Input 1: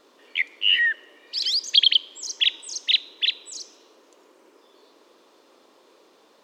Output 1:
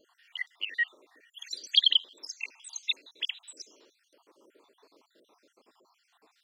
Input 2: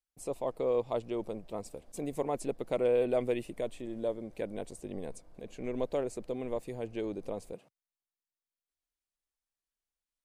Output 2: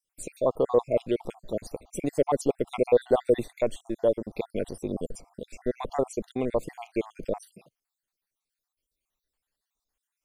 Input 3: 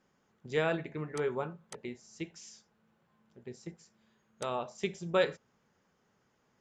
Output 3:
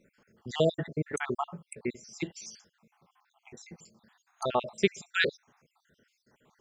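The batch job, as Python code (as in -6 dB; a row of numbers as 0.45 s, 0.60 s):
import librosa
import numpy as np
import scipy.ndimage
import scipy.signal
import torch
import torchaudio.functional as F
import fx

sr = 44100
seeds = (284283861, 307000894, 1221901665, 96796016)

y = fx.spec_dropout(x, sr, seeds[0], share_pct=60)
y = librosa.util.normalize(y) * 10.0 ** (-9 / 20.0)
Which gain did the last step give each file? -4.5 dB, +10.5 dB, +9.5 dB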